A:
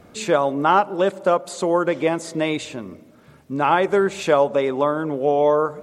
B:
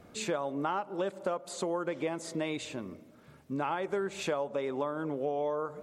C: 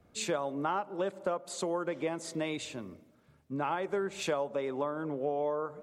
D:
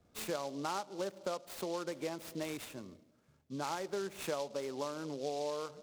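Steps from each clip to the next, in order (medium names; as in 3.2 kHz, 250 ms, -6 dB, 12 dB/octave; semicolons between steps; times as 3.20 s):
compression 4:1, threshold -23 dBFS, peak gain reduction 10.5 dB; trim -7 dB
three bands expanded up and down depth 40%
delay time shaken by noise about 4.3 kHz, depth 0.05 ms; trim -5.5 dB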